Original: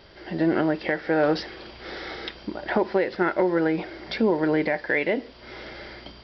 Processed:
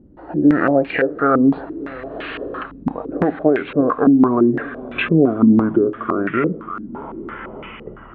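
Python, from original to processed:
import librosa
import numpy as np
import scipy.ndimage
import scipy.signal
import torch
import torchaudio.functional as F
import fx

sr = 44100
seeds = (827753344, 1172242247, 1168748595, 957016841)

y = fx.speed_glide(x, sr, from_pct=92, to_pct=61)
y = fx.echo_feedback(y, sr, ms=587, feedback_pct=53, wet_db=-18.5)
y = fx.filter_held_lowpass(y, sr, hz=5.9, low_hz=250.0, high_hz=2400.0)
y = y * librosa.db_to_amplitude(3.5)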